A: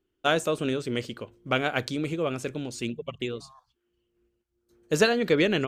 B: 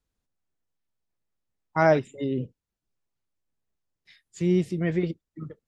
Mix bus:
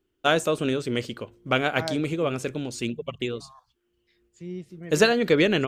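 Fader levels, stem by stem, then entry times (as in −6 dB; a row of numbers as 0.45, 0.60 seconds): +2.5, −13.5 decibels; 0.00, 0.00 seconds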